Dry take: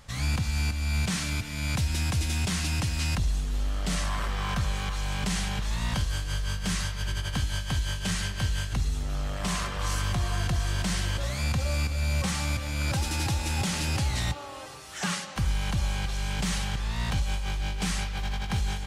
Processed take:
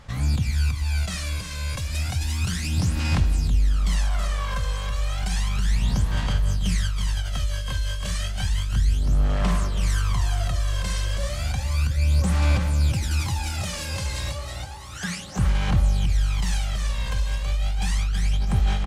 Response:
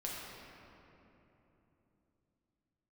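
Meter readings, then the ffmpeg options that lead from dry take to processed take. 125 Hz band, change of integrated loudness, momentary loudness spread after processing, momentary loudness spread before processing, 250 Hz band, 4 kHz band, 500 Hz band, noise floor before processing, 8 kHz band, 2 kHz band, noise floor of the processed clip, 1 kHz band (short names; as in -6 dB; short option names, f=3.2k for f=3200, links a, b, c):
+5.0 dB, +4.0 dB, 6 LU, 4 LU, +1.5 dB, +0.5 dB, +2.0 dB, -37 dBFS, 0.0 dB, 0.0 dB, -32 dBFS, +0.5 dB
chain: -af "aecho=1:1:325|650|975|1300:0.531|0.191|0.0688|0.0248,aphaser=in_gain=1:out_gain=1:delay=1.9:decay=0.66:speed=0.32:type=sinusoidal,volume=-3.5dB"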